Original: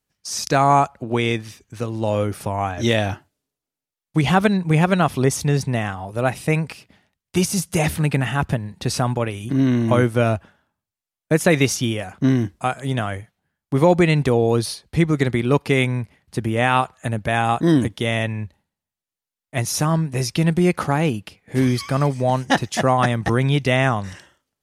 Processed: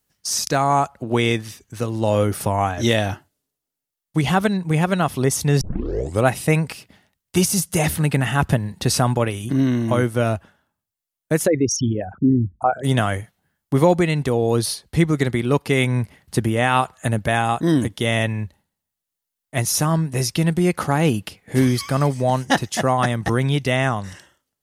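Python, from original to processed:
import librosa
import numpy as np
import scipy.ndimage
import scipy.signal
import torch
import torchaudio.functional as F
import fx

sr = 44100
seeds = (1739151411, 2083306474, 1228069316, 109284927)

y = fx.envelope_sharpen(x, sr, power=3.0, at=(11.46, 12.83), fade=0.02)
y = fx.edit(y, sr, fx.tape_start(start_s=5.61, length_s=0.63), tone=tone)
y = fx.high_shelf(y, sr, hz=9100.0, db=8.5)
y = fx.notch(y, sr, hz=2400.0, q=19.0)
y = fx.rider(y, sr, range_db=10, speed_s=0.5)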